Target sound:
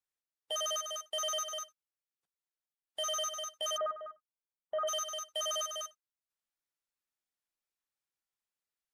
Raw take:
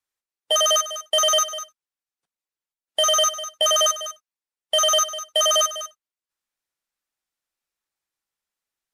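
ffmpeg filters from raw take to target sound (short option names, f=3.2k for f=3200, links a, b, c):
-filter_complex "[0:a]asplit=3[a][b][c];[a]afade=t=out:st=3.76:d=0.02[d];[b]lowpass=f=1.5k:w=0.5412,lowpass=f=1.5k:w=1.3066,afade=t=in:st=3.76:d=0.02,afade=t=out:st=4.87:d=0.02[e];[c]afade=t=in:st=4.87:d=0.02[f];[d][e][f]amix=inputs=3:normalize=0,alimiter=limit=-20dB:level=0:latency=1:release=58,volume=-8.5dB"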